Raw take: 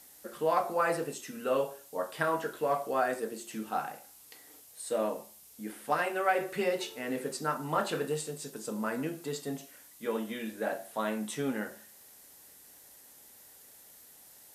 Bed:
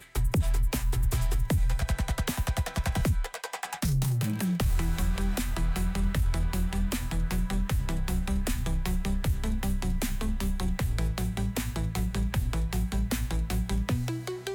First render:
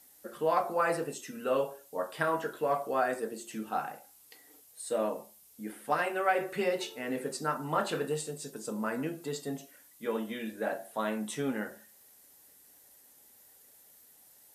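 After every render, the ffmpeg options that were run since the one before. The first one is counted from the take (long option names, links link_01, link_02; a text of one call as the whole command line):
ffmpeg -i in.wav -af "afftdn=noise_reduction=6:noise_floor=-56" out.wav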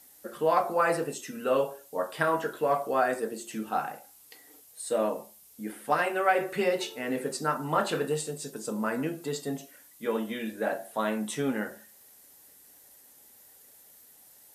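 ffmpeg -i in.wav -af "volume=3.5dB" out.wav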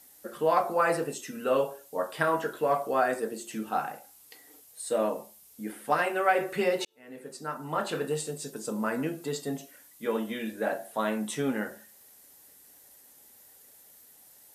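ffmpeg -i in.wav -filter_complex "[0:a]asplit=2[link_01][link_02];[link_01]atrim=end=6.85,asetpts=PTS-STARTPTS,afade=type=out:start_time=6.846:duration=0.004:curve=hsin[link_03];[link_02]atrim=start=6.85,asetpts=PTS-STARTPTS,afade=type=in:duration=1.45[link_04];[link_03][link_04]concat=n=2:v=0:a=1" out.wav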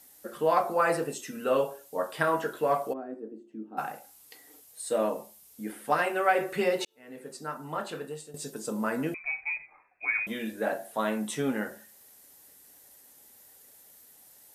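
ffmpeg -i in.wav -filter_complex "[0:a]asplit=3[link_01][link_02][link_03];[link_01]afade=type=out:start_time=2.92:duration=0.02[link_04];[link_02]bandpass=frequency=290:width_type=q:width=3.4,afade=type=in:start_time=2.92:duration=0.02,afade=type=out:start_time=3.77:duration=0.02[link_05];[link_03]afade=type=in:start_time=3.77:duration=0.02[link_06];[link_04][link_05][link_06]amix=inputs=3:normalize=0,asettb=1/sr,asplit=3[link_07][link_08][link_09];[link_07]atrim=end=9.144[link_10];[link_08]atrim=start=9.14:end=10.27,asetpts=PTS-STARTPTS,afade=type=in:duration=0.004:curve=qsin,afade=type=out:start_time=1.126:duration=0.004:curve=qsin,lowpass=frequency=2300:width_type=q:width=0.5098,lowpass=frequency=2300:width_type=q:width=0.6013,lowpass=frequency=2300:width_type=q:width=0.9,lowpass=frequency=2300:width_type=q:width=2.563,afreqshift=-2700[link_11];[link_09]atrim=start=10.266[link_12];[link_10][link_11]acrossfade=duration=0.004:curve1=hsin:curve2=qsin[link_13];[link_13][link_12]acrossfade=duration=0.004:curve1=qsin:curve2=hsin,asplit=2[link_14][link_15];[link_14]atrim=end=8.34,asetpts=PTS-STARTPTS,afade=type=out:start_time=7.35:duration=0.99:silence=0.199526[link_16];[link_15]atrim=start=8.34,asetpts=PTS-STARTPTS,afade=type=in:duration=0.004:curve=hsin:silence=0.199526[link_17];[link_16][link_17]concat=n=2:v=0:a=1" out.wav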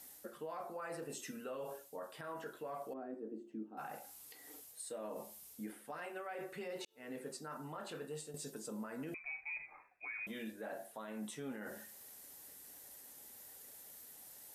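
ffmpeg -i in.wav -af "areverse,acompressor=threshold=-38dB:ratio=4,areverse,alimiter=level_in=12dB:limit=-24dB:level=0:latency=1:release=163,volume=-12dB" out.wav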